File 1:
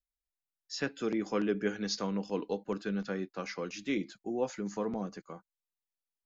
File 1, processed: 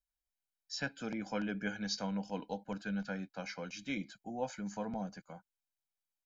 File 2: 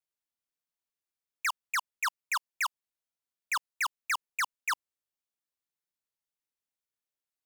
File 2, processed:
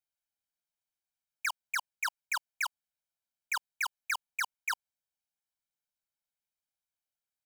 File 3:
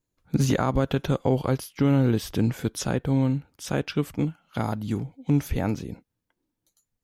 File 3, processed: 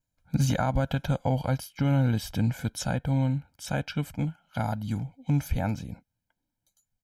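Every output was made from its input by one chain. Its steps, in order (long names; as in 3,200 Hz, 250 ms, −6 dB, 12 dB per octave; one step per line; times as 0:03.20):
comb filter 1.3 ms, depth 80%
level −4.5 dB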